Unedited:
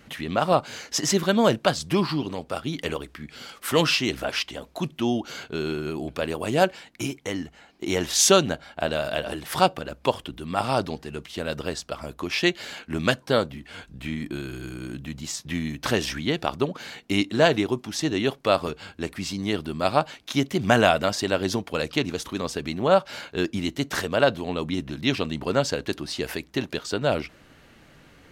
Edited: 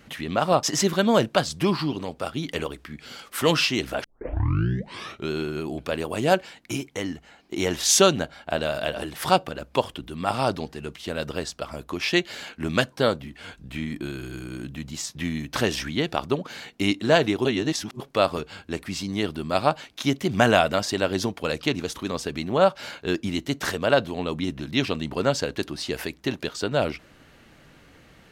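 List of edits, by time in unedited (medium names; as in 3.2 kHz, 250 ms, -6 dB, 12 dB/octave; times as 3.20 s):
0.63–0.93 s: delete
4.34 s: tape start 1.27 s
17.75–18.30 s: reverse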